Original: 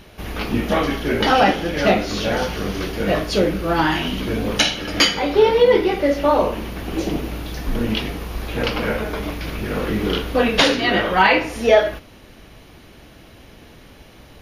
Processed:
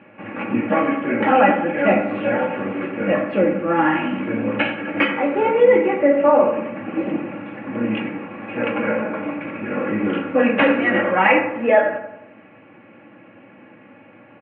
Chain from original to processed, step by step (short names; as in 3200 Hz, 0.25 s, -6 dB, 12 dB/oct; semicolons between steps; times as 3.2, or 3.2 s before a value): Chebyshev band-pass 110–2600 Hz, order 5; comb 3.6 ms, depth 65%; on a send: analogue delay 89 ms, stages 1024, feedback 50%, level -8.5 dB; on the sum: gain -1 dB